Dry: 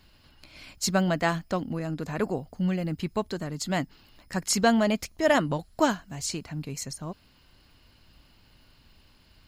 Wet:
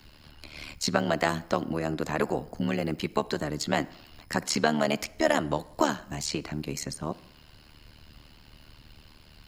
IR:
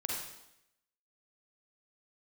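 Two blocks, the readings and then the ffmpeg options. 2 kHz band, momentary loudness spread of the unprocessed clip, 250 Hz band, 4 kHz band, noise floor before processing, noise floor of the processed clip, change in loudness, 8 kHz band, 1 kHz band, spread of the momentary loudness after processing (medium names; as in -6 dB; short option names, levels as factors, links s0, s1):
0.0 dB, 13 LU, -2.5 dB, +0.5 dB, -60 dBFS, -55 dBFS, -1.0 dB, -3.0 dB, 0.0 dB, 9 LU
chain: -filter_complex "[0:a]tremolo=f=75:d=0.889,acrossover=split=240|590|4700[s0][s1][s2][s3];[s0]acompressor=threshold=0.00501:ratio=4[s4];[s1]acompressor=threshold=0.0126:ratio=4[s5];[s2]acompressor=threshold=0.02:ratio=4[s6];[s3]acompressor=threshold=0.00447:ratio=4[s7];[s4][s5][s6][s7]amix=inputs=4:normalize=0,asplit=2[s8][s9];[1:a]atrim=start_sample=2205,highshelf=f=4200:g=-10[s10];[s9][s10]afir=irnorm=-1:irlink=0,volume=0.106[s11];[s8][s11]amix=inputs=2:normalize=0,volume=2.66"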